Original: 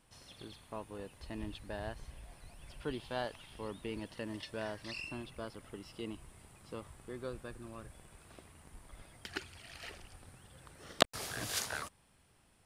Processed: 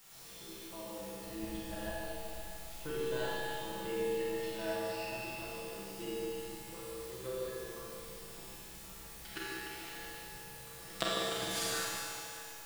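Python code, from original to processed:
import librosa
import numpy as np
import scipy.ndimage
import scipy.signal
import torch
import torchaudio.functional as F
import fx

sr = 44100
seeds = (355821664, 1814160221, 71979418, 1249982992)

p1 = x + 0.77 * np.pad(x, (int(6.0 * sr / 1000.0), 0))[:len(x)]
p2 = fx.level_steps(p1, sr, step_db=19)
p3 = p1 + (p2 * 10.0 ** (2.0 / 20.0))
p4 = fx.quant_dither(p3, sr, seeds[0], bits=8, dither='triangular')
p5 = fx.comb_fb(p4, sr, f0_hz=65.0, decay_s=1.7, harmonics='all', damping=0.0, mix_pct=90)
p6 = p5 + fx.echo_alternate(p5, sr, ms=149, hz=1200.0, feedback_pct=61, wet_db=-7, dry=0)
p7 = fx.rev_schroeder(p6, sr, rt60_s=2.3, comb_ms=33, drr_db=-4.5)
y = p7 * 10.0 ** (3.5 / 20.0)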